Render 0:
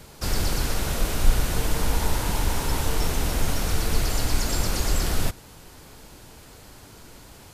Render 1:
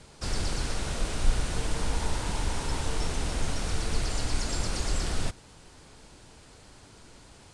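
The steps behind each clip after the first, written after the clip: Chebyshev low-pass 9400 Hz, order 4; gain -4.5 dB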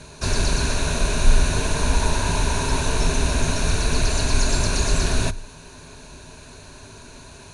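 ripple EQ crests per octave 1.5, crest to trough 10 dB; gain +8.5 dB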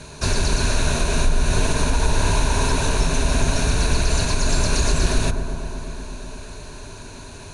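compressor 4:1, threshold -18 dBFS, peak gain reduction 9.5 dB; dark delay 0.121 s, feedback 82%, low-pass 1200 Hz, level -9.5 dB; gain +3 dB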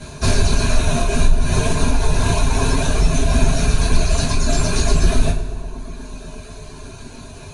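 reverb removal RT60 2 s; low shelf 260 Hz +6.5 dB; two-slope reverb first 0.23 s, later 1.6 s, from -19 dB, DRR -7.5 dB; gain -4.5 dB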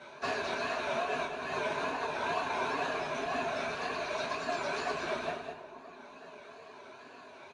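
wow and flutter 100 cents; BPF 560–2400 Hz; echo 0.205 s -7.5 dB; gain -6.5 dB

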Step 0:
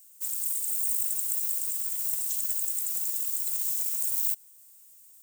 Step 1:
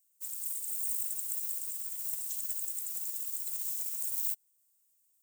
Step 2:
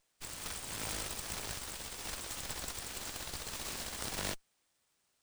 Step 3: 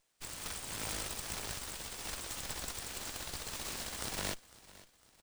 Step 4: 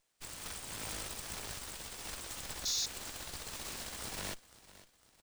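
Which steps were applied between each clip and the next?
upward expander 1.5:1, over -51 dBFS; gain -4.5 dB
flange 0.39 Hz, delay 1.2 ms, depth 7.4 ms, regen -69%; running maximum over 3 samples; gain +2 dB
feedback echo 0.504 s, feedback 45%, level -19.5 dB
painted sound noise, 2.65–2.86, 3400–7000 Hz -28 dBFS; soft clip -28.5 dBFS, distortion -11 dB; gain -1.5 dB

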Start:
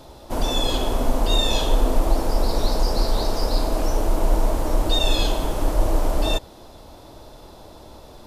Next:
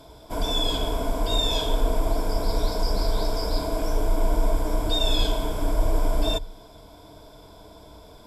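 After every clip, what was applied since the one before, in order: ripple EQ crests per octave 1.7, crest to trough 11 dB; gain -5 dB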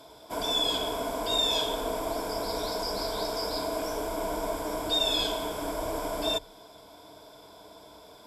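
HPF 410 Hz 6 dB/oct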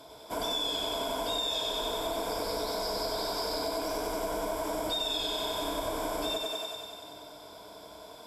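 on a send: thinning echo 94 ms, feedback 73%, high-pass 270 Hz, level -3.5 dB; on the sum: compressor, threshold -29 dBFS, peak gain reduction 8.5 dB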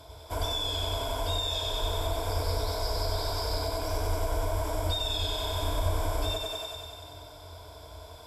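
resonant low shelf 130 Hz +14 dB, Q 3

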